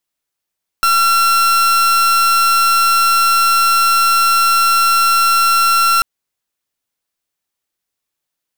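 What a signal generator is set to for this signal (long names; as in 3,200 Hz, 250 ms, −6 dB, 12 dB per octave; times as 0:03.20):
pulse wave 1,360 Hz, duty 41% −12 dBFS 5.19 s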